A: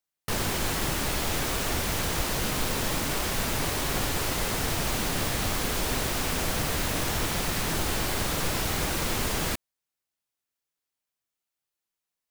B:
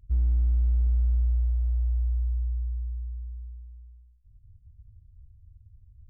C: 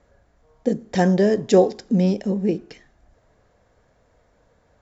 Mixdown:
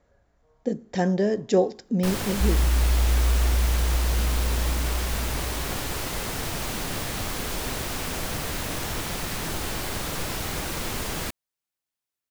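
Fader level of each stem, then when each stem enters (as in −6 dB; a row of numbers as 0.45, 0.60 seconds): −2.0, +1.5, −5.5 decibels; 1.75, 2.30, 0.00 seconds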